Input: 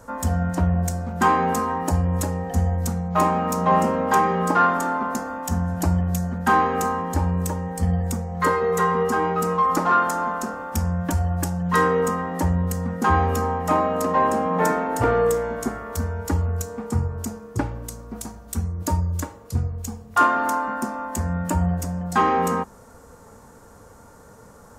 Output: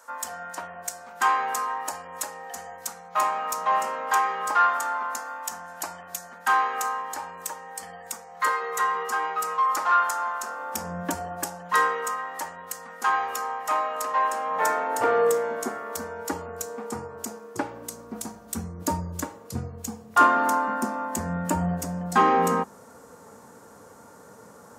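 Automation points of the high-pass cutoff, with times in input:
10.41 s 990 Hz
10.98 s 250 Hz
12.02 s 1 kHz
14.35 s 1 kHz
15.27 s 360 Hz
17.61 s 360 Hz
18.21 s 170 Hz

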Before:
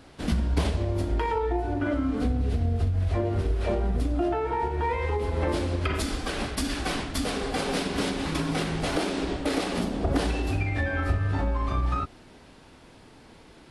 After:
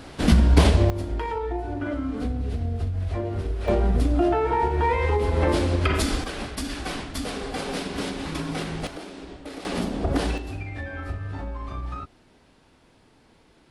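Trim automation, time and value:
+9 dB
from 0.90 s -2 dB
from 3.68 s +5 dB
from 6.24 s -2 dB
from 8.87 s -11 dB
from 9.65 s +1 dB
from 10.38 s -6.5 dB

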